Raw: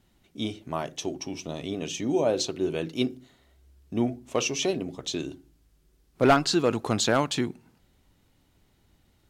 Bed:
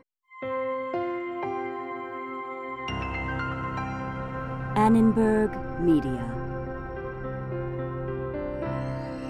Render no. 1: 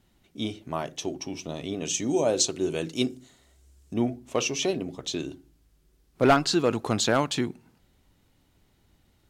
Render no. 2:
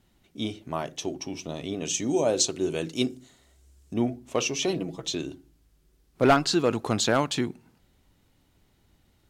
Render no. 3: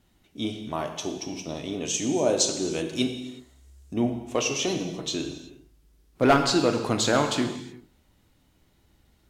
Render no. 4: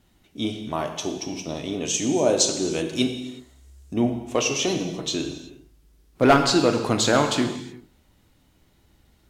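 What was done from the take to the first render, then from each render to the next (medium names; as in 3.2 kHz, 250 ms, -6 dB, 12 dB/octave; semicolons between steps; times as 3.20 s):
1.85–3.94 s: peaking EQ 7.6 kHz +11.5 dB 1 oct
4.67–5.15 s: comb 6.1 ms
gated-style reverb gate 390 ms falling, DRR 4.5 dB
trim +3 dB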